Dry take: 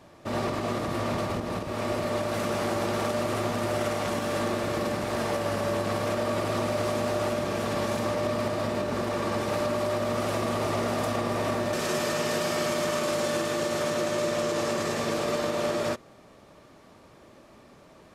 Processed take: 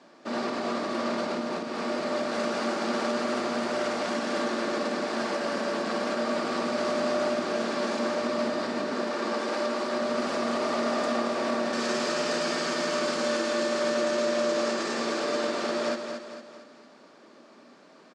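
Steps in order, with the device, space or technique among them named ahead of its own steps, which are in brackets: 8.92–9.80 s: high-pass 210 Hz 12 dB/octave; television speaker (cabinet simulation 210–7900 Hz, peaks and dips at 240 Hz +5 dB, 1.5 kHz +5 dB, 4.6 kHz +6 dB); feedback delay 227 ms, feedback 47%, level -7 dB; trim -2 dB

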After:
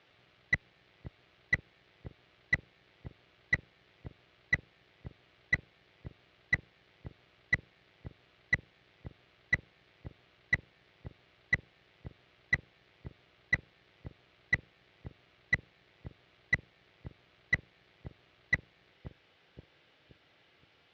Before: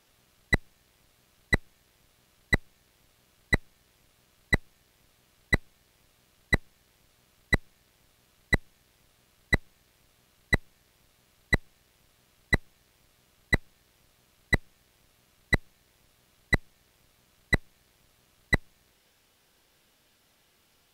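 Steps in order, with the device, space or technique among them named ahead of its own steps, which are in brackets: analogue delay pedal into a guitar amplifier (bucket-brigade echo 522 ms, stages 2048, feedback 34%, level -11 dB; valve stage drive 27 dB, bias 0.5; cabinet simulation 100–3800 Hz, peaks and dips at 220 Hz -10 dB, 1 kHz -4 dB, 2.1 kHz +3 dB); trim +4.5 dB

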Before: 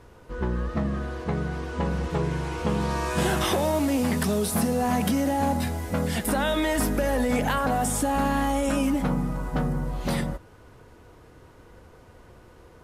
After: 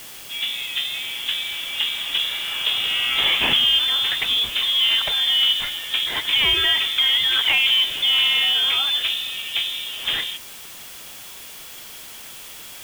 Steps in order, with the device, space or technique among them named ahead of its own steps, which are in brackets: scrambled radio voice (band-pass 390–3100 Hz; frequency inversion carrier 3.8 kHz; white noise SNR 17 dB); trim +8.5 dB

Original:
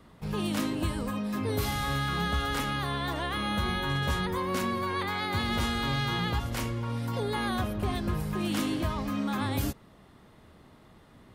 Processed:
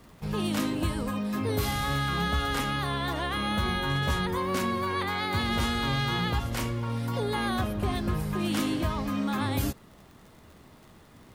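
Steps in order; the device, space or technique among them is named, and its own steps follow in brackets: vinyl LP (wow and flutter 17 cents; crackle 60 per s -45 dBFS; pink noise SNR 34 dB); trim +1.5 dB

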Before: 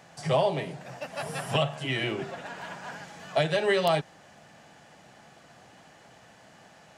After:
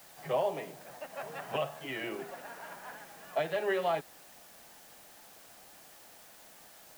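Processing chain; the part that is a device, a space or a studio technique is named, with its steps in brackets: wax cylinder (band-pass 270–2300 Hz; wow and flutter; white noise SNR 18 dB); trim -5.5 dB

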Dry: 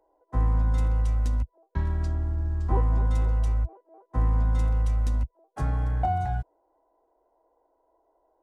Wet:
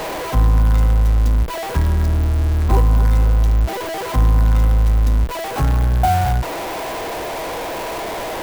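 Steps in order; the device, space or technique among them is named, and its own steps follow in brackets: early CD player with a faulty converter (jump at every zero crossing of -27 dBFS; sampling jitter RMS 0.024 ms); trim +7.5 dB

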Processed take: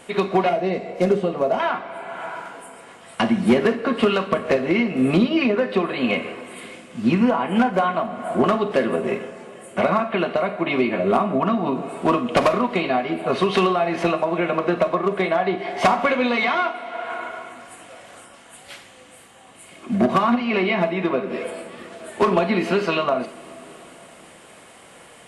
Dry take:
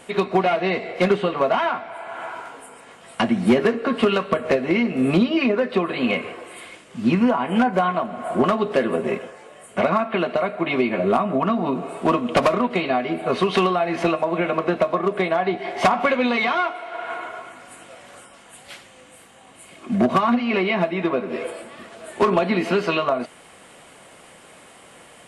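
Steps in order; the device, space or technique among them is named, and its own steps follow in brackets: 0.49–1.60 s: high-order bell 2 kHz -9 dB 2.5 oct; Schroeder reverb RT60 0.36 s, combs from 31 ms, DRR 11.5 dB; compressed reverb return (on a send at -13 dB: reverberation RT60 2.7 s, pre-delay 69 ms + compression, threshold -24 dBFS, peak gain reduction 11 dB)

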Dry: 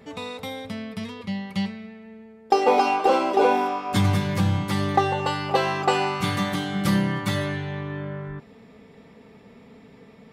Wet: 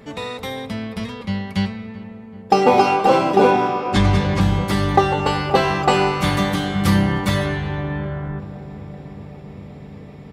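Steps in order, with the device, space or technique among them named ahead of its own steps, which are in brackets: octave pedal (harmony voices -12 st -7 dB); 3.51–4.41 s: low-pass 6.6 kHz 12 dB/octave; filtered feedback delay 383 ms, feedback 85%, low-pass 1.6 kHz, level -18 dB; trim +4.5 dB

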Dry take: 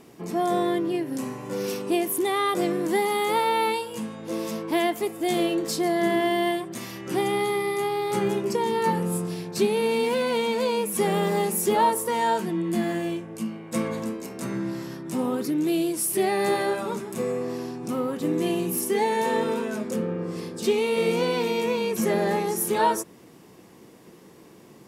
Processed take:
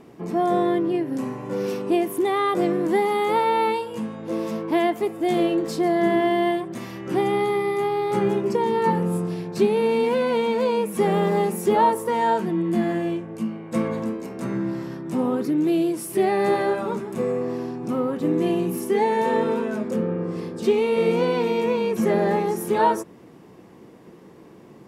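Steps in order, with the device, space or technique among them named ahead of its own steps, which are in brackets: through cloth (treble shelf 3.2 kHz -13 dB); trim +3.5 dB

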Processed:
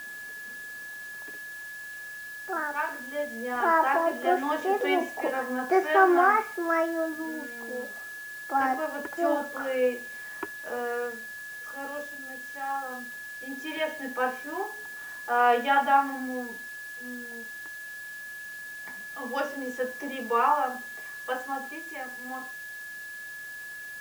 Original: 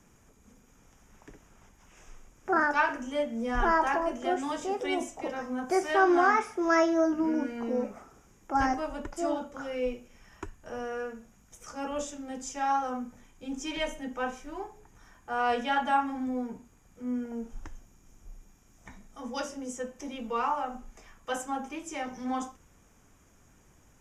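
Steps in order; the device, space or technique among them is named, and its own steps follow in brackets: shortwave radio (band-pass 330–2600 Hz; tremolo 0.2 Hz, depth 76%; whistle 1.7 kHz -45 dBFS; white noise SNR 21 dB); trim +7 dB

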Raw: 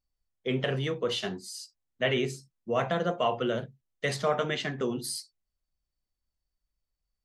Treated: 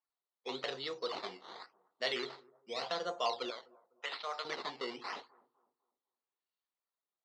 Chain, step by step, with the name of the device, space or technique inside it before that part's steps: 3.50–4.45 s: high-pass 1.3 kHz 6 dB/octave; circuit-bent sampling toy (decimation with a swept rate 12×, swing 100% 0.88 Hz; cabinet simulation 590–4600 Hz, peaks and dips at 610 Hz -5 dB, 1.6 kHz -7 dB, 2.4 kHz -5 dB, 4.1 kHz +7 dB); 2.36–2.81 s: peaking EQ 1.3 kHz -2 dB -> -9 dB 2.5 oct; bucket-brigade echo 251 ms, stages 2048, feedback 33%, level -23 dB; trim -3 dB

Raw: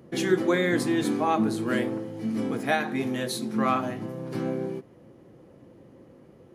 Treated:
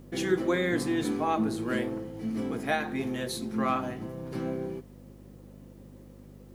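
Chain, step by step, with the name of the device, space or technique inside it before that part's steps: video cassette with head-switching buzz (mains buzz 50 Hz, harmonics 5, -47 dBFS -1 dB/octave; white noise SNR 39 dB); trim -3.5 dB

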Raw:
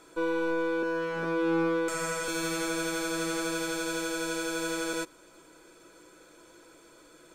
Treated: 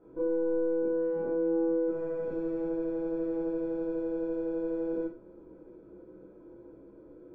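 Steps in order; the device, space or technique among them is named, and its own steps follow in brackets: television next door (compression 3:1, threshold -33 dBFS, peak gain reduction 7.5 dB; low-pass 420 Hz 12 dB/octave; reverberation RT60 0.30 s, pre-delay 19 ms, DRR -6.5 dB)

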